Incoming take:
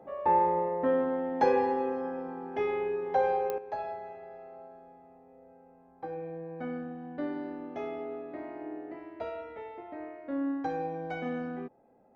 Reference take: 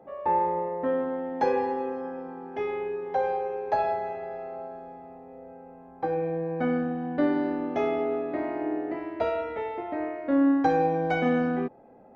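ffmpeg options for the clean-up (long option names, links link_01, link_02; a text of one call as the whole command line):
ffmpeg -i in.wav -af "adeclick=threshold=4,asetnsamples=nb_out_samples=441:pad=0,asendcmd='3.58 volume volume 10.5dB',volume=0dB" out.wav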